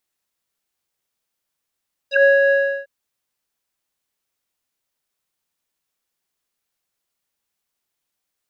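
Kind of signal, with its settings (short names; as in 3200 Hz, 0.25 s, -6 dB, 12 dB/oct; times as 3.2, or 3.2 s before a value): synth note square C#5 12 dB/oct, low-pass 1400 Hz, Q 9.4, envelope 2 oct, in 0.06 s, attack 0.116 s, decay 0.17 s, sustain -3.5 dB, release 0.35 s, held 0.40 s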